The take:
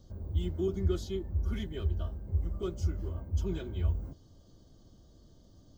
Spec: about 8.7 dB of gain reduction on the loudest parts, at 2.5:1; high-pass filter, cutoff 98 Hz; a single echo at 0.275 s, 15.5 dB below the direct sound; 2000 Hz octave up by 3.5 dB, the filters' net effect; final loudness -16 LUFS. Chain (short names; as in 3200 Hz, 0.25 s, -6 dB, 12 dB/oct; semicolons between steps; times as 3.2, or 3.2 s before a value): HPF 98 Hz; bell 2000 Hz +4.5 dB; compressor 2.5:1, threshold -41 dBFS; echo 0.275 s -15.5 dB; gain +28 dB